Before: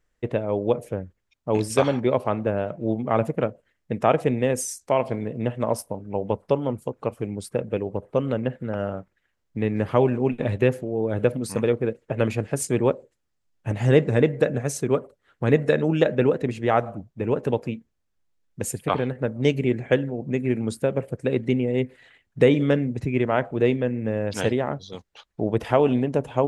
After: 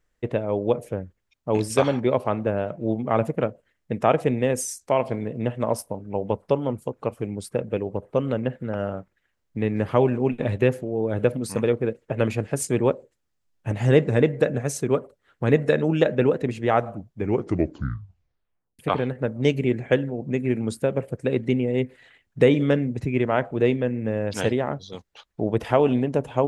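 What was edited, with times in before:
0:17.12: tape stop 1.67 s

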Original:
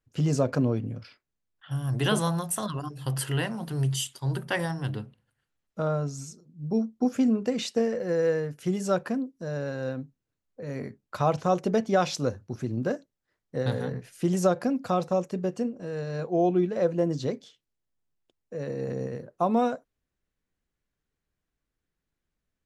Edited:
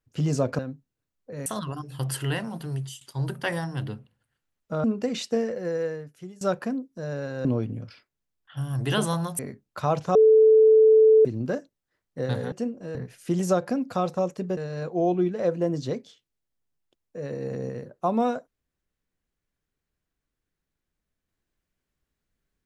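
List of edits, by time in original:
0:00.59–0:02.53: swap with 0:09.89–0:10.76
0:03.62–0:04.08: fade out, to −17.5 dB
0:05.91–0:07.28: remove
0:07.88–0:08.85: fade out linear, to −21.5 dB
0:11.52–0:12.62: beep over 438 Hz −12 dBFS
0:15.51–0:15.94: move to 0:13.89

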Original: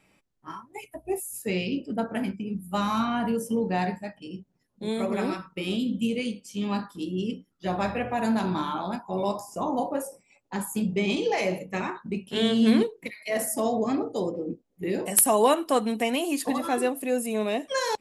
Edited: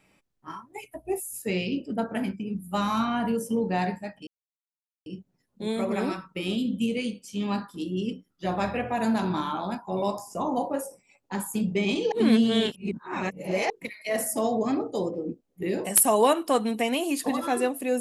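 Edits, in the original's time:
0:04.27: splice in silence 0.79 s
0:11.33–0:12.91: reverse

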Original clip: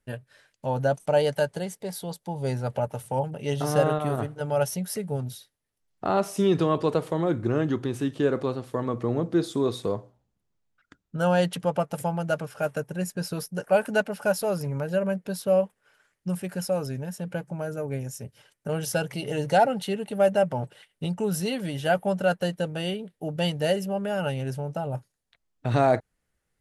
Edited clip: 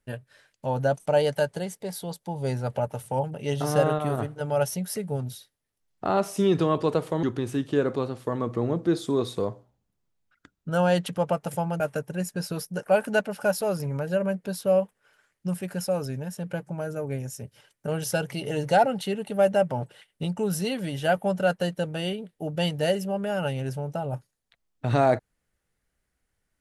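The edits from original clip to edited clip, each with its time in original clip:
0:07.23–0:07.70: remove
0:12.27–0:12.61: remove

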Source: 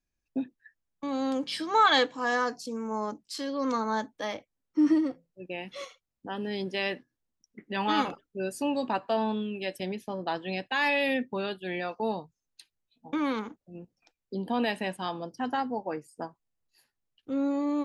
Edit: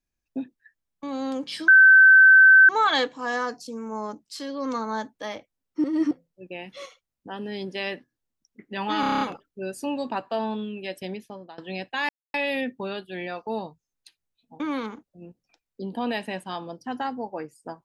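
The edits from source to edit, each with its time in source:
0:01.68: insert tone 1,540 Hz −9 dBFS 1.01 s
0:04.83–0:05.10: reverse
0:07.99: stutter 0.03 s, 8 plays
0:09.91–0:10.36: fade out, to −22 dB
0:10.87: splice in silence 0.25 s

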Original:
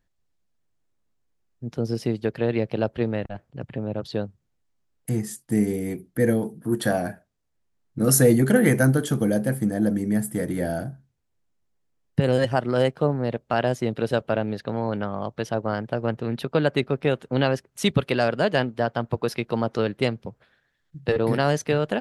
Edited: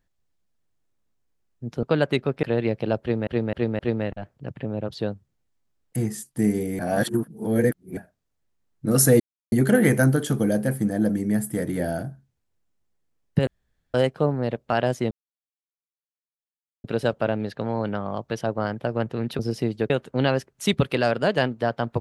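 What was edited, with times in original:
0:01.83–0:02.34: swap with 0:16.47–0:17.07
0:02.92–0:03.18: repeat, 4 plays
0:05.92–0:07.10: reverse
0:08.33: splice in silence 0.32 s
0:12.28–0:12.75: fill with room tone
0:13.92: splice in silence 1.73 s

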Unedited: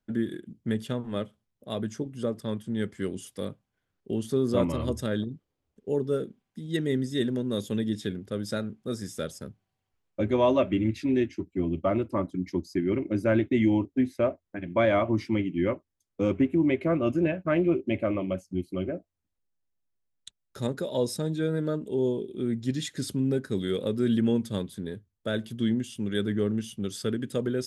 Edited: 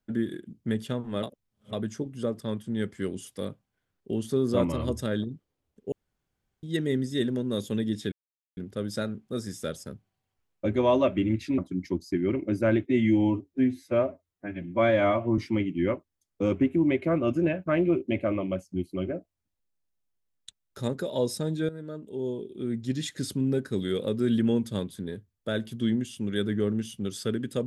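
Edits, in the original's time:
0:01.23–0:01.73: reverse
0:05.92–0:06.63: fill with room tone
0:08.12: splice in silence 0.45 s
0:11.13–0:12.21: remove
0:13.49–0:15.17: time-stretch 1.5×
0:21.48–0:22.85: fade in, from −13.5 dB

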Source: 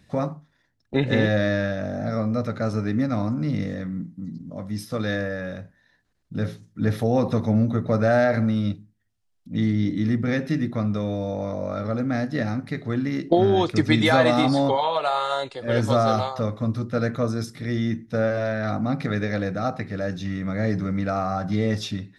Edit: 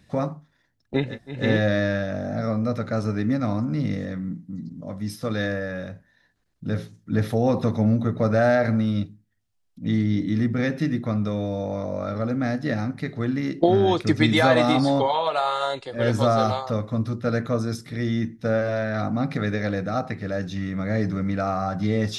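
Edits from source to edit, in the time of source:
0:01.07: splice in room tone 0.31 s, crossfade 0.24 s

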